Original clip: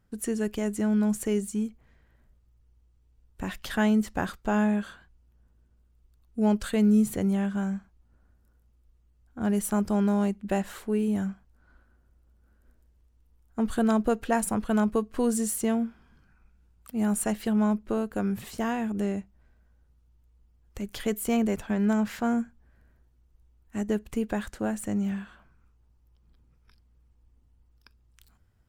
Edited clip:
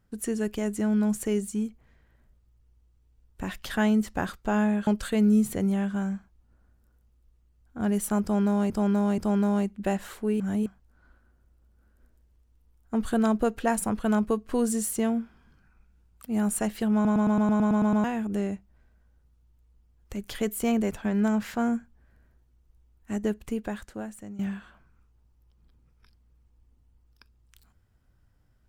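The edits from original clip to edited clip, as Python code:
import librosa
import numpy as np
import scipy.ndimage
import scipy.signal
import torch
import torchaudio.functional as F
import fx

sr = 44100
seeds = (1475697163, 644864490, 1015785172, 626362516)

y = fx.edit(x, sr, fx.cut(start_s=4.87, length_s=1.61),
    fx.repeat(start_s=9.83, length_s=0.48, count=3),
    fx.reverse_span(start_s=11.05, length_s=0.26),
    fx.stutter_over(start_s=17.59, slice_s=0.11, count=10),
    fx.fade_out_to(start_s=23.91, length_s=1.13, floor_db=-15.5), tone=tone)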